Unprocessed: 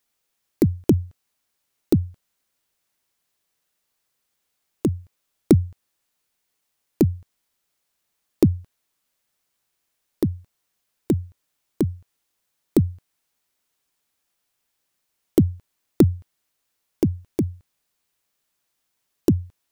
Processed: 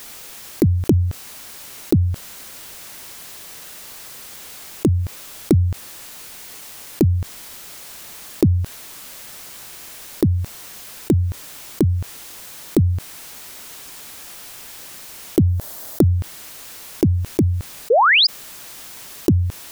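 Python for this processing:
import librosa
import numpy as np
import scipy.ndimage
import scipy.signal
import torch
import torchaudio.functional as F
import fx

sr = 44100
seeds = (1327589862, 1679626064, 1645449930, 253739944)

y = fx.graphic_eq_15(x, sr, hz=(630, 2500, 16000), db=(8, -7, 7), at=(15.47, 16.09))
y = fx.spec_paint(y, sr, seeds[0], shape='rise', start_s=17.9, length_s=0.37, low_hz=420.0, high_hz=5300.0, level_db=-16.0)
y = fx.env_flatten(y, sr, amount_pct=70)
y = y * 10.0 ** (-2.0 / 20.0)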